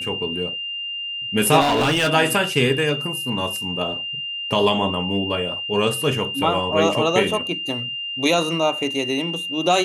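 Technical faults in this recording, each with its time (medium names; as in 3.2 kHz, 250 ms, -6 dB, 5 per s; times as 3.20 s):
whine 2.8 kHz -26 dBFS
1.60–2.11 s: clipped -15 dBFS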